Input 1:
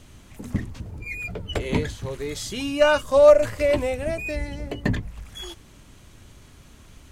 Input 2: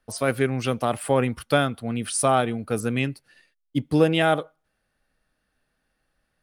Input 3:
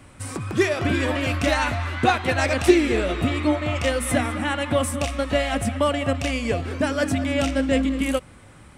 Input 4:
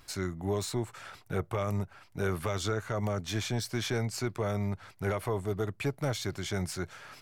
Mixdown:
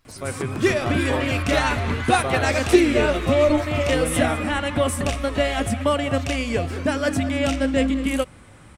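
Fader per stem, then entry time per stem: -6.0, -7.5, +0.5, -9.0 dB; 0.15, 0.00, 0.05, 0.00 s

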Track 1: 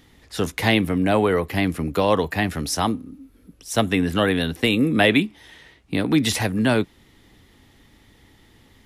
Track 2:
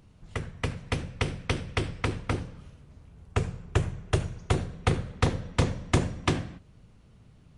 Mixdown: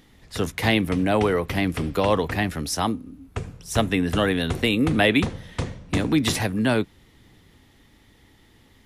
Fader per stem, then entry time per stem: -2.0, -3.5 dB; 0.00, 0.00 s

